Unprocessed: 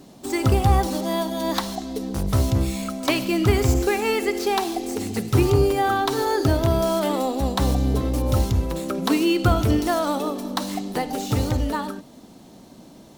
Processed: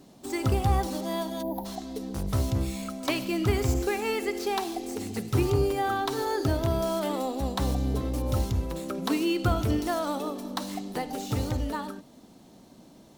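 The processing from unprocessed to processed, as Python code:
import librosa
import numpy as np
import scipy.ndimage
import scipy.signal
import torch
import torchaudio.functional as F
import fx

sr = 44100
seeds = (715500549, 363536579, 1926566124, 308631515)

y = fx.spec_box(x, sr, start_s=1.42, length_s=0.23, low_hz=990.0, high_hz=11000.0, gain_db=-27)
y = y * 10.0 ** (-6.5 / 20.0)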